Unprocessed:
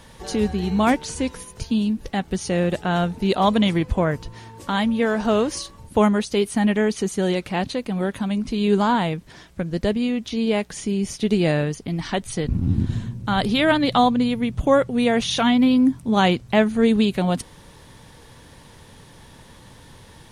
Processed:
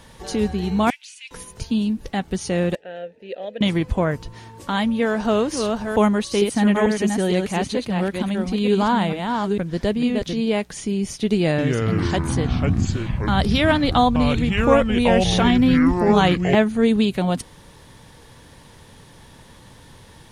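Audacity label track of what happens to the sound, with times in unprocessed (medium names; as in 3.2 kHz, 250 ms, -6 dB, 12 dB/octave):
0.900000	1.310000	ladder high-pass 2.3 kHz, resonance 65%
2.750000	3.610000	vowel filter e
5.060000	10.410000	chunks repeated in reverse 452 ms, level -4 dB
11.350000	16.550000	ever faster or slower copies 233 ms, each echo -5 st, echoes 3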